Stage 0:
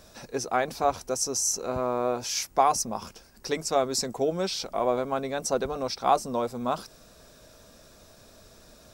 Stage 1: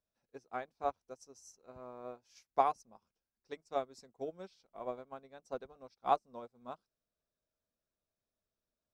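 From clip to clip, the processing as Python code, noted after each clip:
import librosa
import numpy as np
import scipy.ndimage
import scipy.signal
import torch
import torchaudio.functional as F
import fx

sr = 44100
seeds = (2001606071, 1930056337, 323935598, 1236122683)

y = fx.high_shelf(x, sr, hz=7000.0, db=-11.0)
y = fx.upward_expand(y, sr, threshold_db=-40.0, expansion=2.5)
y = y * 10.0 ** (-5.5 / 20.0)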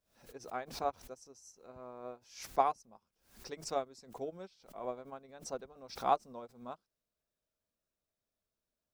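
y = fx.pre_swell(x, sr, db_per_s=120.0)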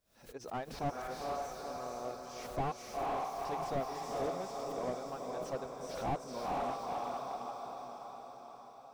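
y = fx.echo_diffused(x, sr, ms=477, feedback_pct=60, wet_db=-3.5)
y = fx.slew_limit(y, sr, full_power_hz=12.0)
y = y * 10.0 ** (3.0 / 20.0)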